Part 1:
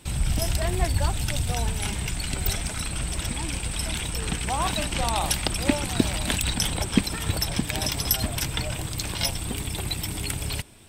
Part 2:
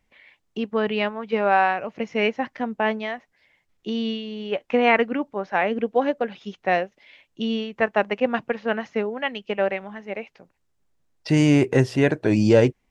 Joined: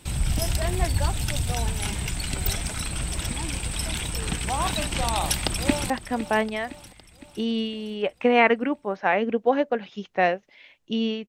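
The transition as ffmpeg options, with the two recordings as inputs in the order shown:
-filter_complex "[0:a]apad=whole_dur=11.28,atrim=end=11.28,atrim=end=5.902[s0];[1:a]atrim=start=2.388:end=7.77[s1];[s0][s1]acrossfade=d=0.004:c1=hsin:c2=hsin,asplit=2[s2][s3];[s3]afade=t=in:st=5.23:d=0.01,afade=t=out:st=5.9:d=0.01,aecho=0:1:510|1020|1530|2040|2550|3060:0.199526|0.109739|0.0603567|0.0331962|0.0182579|0.0100418[s4];[s2][s4]amix=inputs=2:normalize=0"

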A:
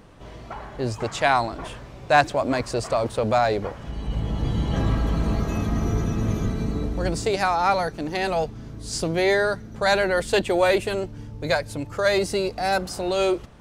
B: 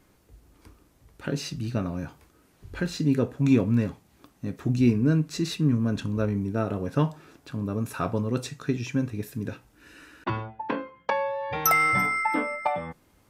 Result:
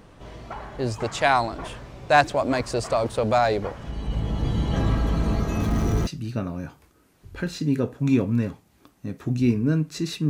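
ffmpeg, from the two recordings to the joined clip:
-filter_complex "[0:a]asettb=1/sr,asplit=3[s0][s1][s2];[s0]atrim=end=5.604[s3];[s1]atrim=start=5.6:end=6.07,asetpts=PTS-STARTPTS,afade=t=in:d=0.004:c=qsin,afade=t=out:st=0.466:d=0.004:c=qsin,aeval=exprs='val(0)+0.5*0.0237*sgn(val(0))':c=same[s4];[s2]atrim=start=6.066[s5];[s3][s4]acrossfade=d=0.004:c1=hsin:c2=qsin[s6];[s6][s5]acrossfade=d=0.004:c1=qsin:c2=hsin,apad=whole_dur=10.29,atrim=end=10.29,atrim=end=6.072[s7];[1:a]atrim=start=1.458:end=5.68[s8];[s7][s8]acrossfade=d=0.004:c1=hsin:c2=hsin"

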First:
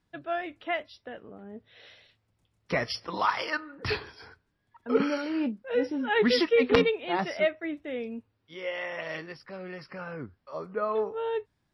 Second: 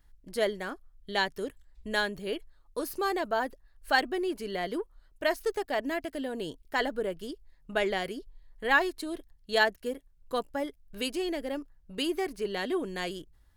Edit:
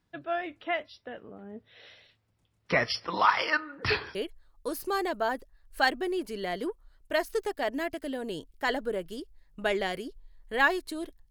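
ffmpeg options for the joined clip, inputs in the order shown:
-filter_complex "[0:a]asettb=1/sr,asplit=3[s0][s1][s2];[s0]atrim=end=2.654[s3];[s1]atrim=start=2.65:end=4.15,asetpts=PTS-STARTPTS,afade=t=in:d=0.004:c=qsin,afade=t=out:st=1.496:d=0.004:c=qsin,equalizer=f=1900:w=0.46:g=4.5[s4];[s2]atrim=start=4.146[s5];[s3][s4]acrossfade=d=0.004:c1=hsin:c2=qsin[s6];[s6][s5]acrossfade=d=0.004:c1=qsin:c2=hsin,apad=whole_dur=11.3,atrim=end=11.3,atrim=end=4.152[s7];[1:a]atrim=start=2.258:end=9.41[s8];[s7][s8]acrossfade=d=0.004:c1=hsin:c2=hsin"

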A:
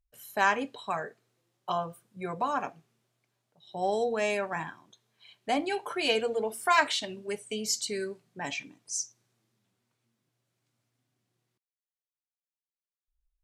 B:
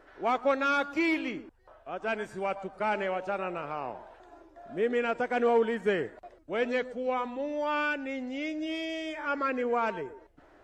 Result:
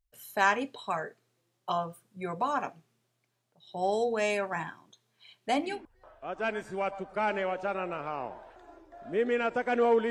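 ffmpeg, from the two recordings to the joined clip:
-filter_complex "[0:a]apad=whole_dur=10.1,atrim=end=10.1,atrim=end=5.87,asetpts=PTS-STARTPTS[s0];[1:a]atrim=start=1.25:end=5.74,asetpts=PTS-STARTPTS[s1];[s0][s1]acrossfade=d=0.26:c1=tri:c2=tri"

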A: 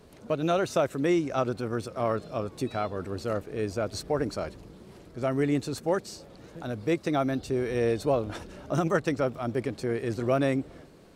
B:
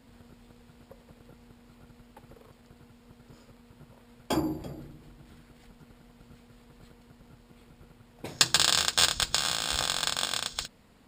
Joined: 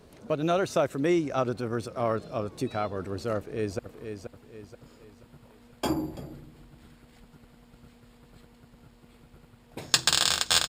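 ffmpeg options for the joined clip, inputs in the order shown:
-filter_complex "[0:a]apad=whole_dur=10.68,atrim=end=10.68,atrim=end=3.792[s0];[1:a]atrim=start=2.258:end=9.15[s1];[s0][s1]acrossfade=d=0.004:c1=hsin:c2=hsin,asplit=2[s2][s3];[s3]afade=t=in:st=3.37:d=0.01,afade=t=out:st=3.79:d=0.01,aecho=0:1:480|960|1440|1920|2400:0.421697|0.168679|0.0674714|0.0269886|0.0107954[s4];[s2][s4]amix=inputs=2:normalize=0"

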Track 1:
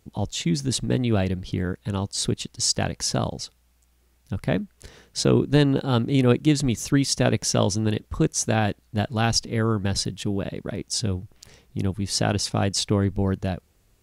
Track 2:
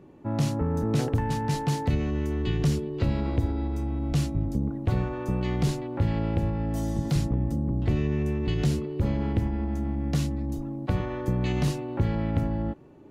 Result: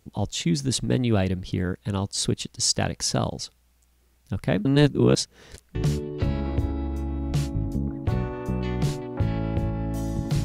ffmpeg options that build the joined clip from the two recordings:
-filter_complex "[0:a]apad=whole_dur=10.44,atrim=end=10.44,asplit=2[s0][s1];[s0]atrim=end=4.652[s2];[s1]atrim=start=4.648:end=5.752,asetpts=PTS-STARTPTS,areverse[s3];[1:a]atrim=start=2.548:end=7.24[s4];[s2][s3]acrossfade=d=0.004:c1=hsin:c2=hsin[s5];[s5][s4]acrossfade=d=0.004:c1=hsin:c2=hsin"

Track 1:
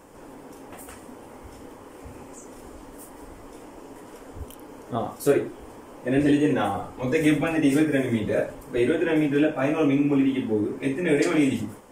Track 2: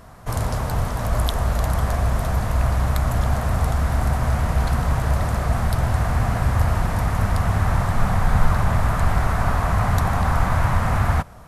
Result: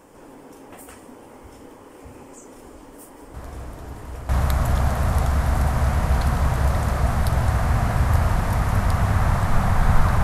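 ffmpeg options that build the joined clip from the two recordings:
-filter_complex "[1:a]asplit=2[s0][s1];[0:a]apad=whole_dur=10.23,atrim=end=10.23,atrim=end=4.292[s2];[s1]atrim=start=2.748:end=8.69[s3];[s0]atrim=start=1.8:end=2.75,asetpts=PTS-STARTPTS,volume=0.168,afade=t=in:d=0.004:c=hsin,afade=t=out:st=0.946:d=0.004:c=hsin,adelay=3340[s4];[s2][s3]acrossfade=d=0.004:c1=hsin:c2=hsin[s5];[s5][s4]amix=inputs=2:normalize=0"

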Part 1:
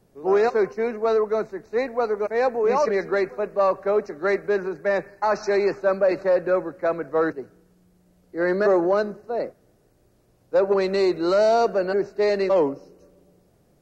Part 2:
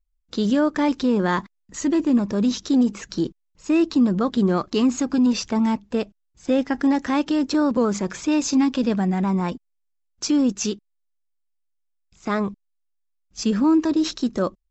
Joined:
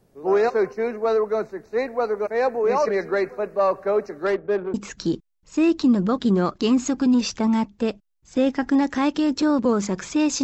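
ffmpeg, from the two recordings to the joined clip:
-filter_complex "[0:a]asettb=1/sr,asplit=3[s0][s1][s2];[s0]atrim=end=4.264[s3];[s1]atrim=start=4.26:end=4.74,asetpts=PTS-STARTPTS,afade=t=in:d=0.004:c=qsin,afade=t=out:st=0.476:d=0.004:c=qsin,adynamicsmooth=sensitivity=1:basefreq=620[s4];[s2]atrim=start=4.736[s5];[s3][s4]acrossfade=d=0.004:c1=hsin:c2=qsin[s6];[s6][s5]acrossfade=d=0.004:c1=qsin:c2=hsin,apad=whole_dur=10.43,atrim=end=10.43,atrim=end=4.742[s7];[1:a]atrim=start=2.858:end=8.55[s8];[s7][s8]acrossfade=d=0.004:c1=hsin:c2=hsin"

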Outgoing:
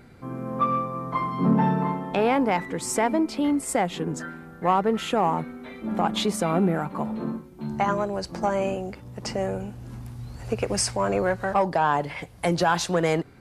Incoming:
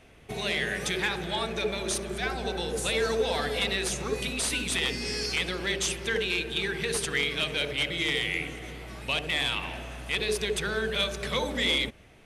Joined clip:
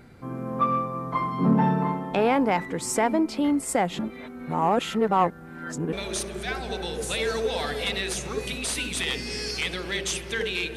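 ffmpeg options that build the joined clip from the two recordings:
-filter_complex "[0:a]apad=whole_dur=10.76,atrim=end=10.76,asplit=2[s0][s1];[s0]atrim=end=3.992[s2];[s1]atrim=start=3.988:end=5.932,asetpts=PTS-STARTPTS,areverse[s3];[1:a]atrim=start=1.678:end=6.51[s4];[s2][s3]acrossfade=d=0.004:c1=hsin:c2=hsin[s5];[s5][s4]acrossfade=d=0.004:c1=hsin:c2=hsin"

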